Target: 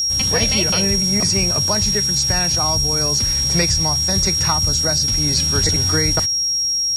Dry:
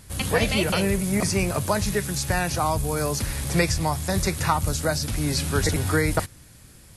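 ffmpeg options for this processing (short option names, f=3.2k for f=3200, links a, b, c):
-filter_complex "[0:a]acrossover=split=6300[a][b];[b]acompressor=threshold=-47dB:ratio=4:attack=1:release=60[c];[a][c]amix=inputs=2:normalize=0,aeval=exprs='val(0)+0.0501*sin(2*PI*5600*n/s)':c=same,bass=f=250:g=3,treble=f=4k:g=12"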